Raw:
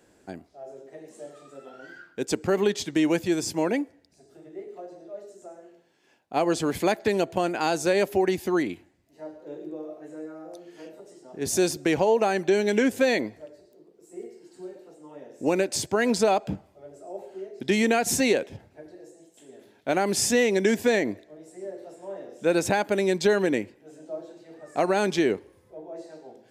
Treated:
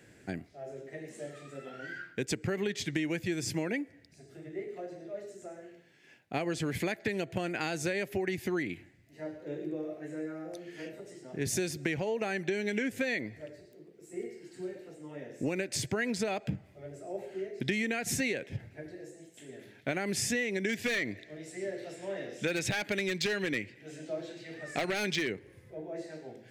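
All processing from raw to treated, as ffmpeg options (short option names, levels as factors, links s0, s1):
-filter_complex "[0:a]asettb=1/sr,asplit=3[s0][s1][s2];[s0]atrim=end=20.694[s3];[s1]atrim=start=20.69:end=25.3,asetpts=PTS-STARTPTS,afade=t=in:d=0.004:c=qsin,afade=t=out:st=4.606:d=0.004:c=qsin,equalizer=f=3800:w=0.59:g=8.5,aeval=exprs='0.2*(abs(mod(val(0)/0.2+3,4)-2)-1)':c=same[s4];[s2]atrim=start=25.296[s5];[s3][s4]acrossfade=d=0.004:c1=hsin:c2=qsin[s6];[s6][s5]acrossfade=d=0.004:c1=qsin:c2=hsin,equalizer=f=125:t=o:w=1:g=11,equalizer=f=1000:t=o:w=1:g=-8,equalizer=f=2000:t=o:w=1:g=11,acompressor=threshold=0.0316:ratio=5"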